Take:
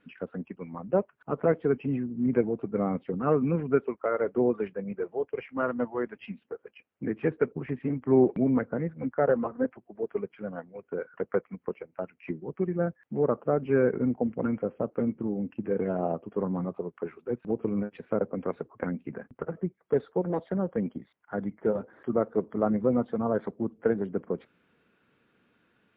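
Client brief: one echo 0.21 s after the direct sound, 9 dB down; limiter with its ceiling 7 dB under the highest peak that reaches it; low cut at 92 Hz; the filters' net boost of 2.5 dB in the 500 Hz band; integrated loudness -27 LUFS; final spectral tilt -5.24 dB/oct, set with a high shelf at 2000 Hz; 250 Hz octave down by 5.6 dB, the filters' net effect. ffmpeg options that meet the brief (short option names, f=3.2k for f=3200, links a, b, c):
-af "highpass=92,equalizer=f=250:t=o:g=-9,equalizer=f=500:t=o:g=6,highshelf=f=2k:g=-7,alimiter=limit=-17.5dB:level=0:latency=1,aecho=1:1:210:0.355,volume=4dB"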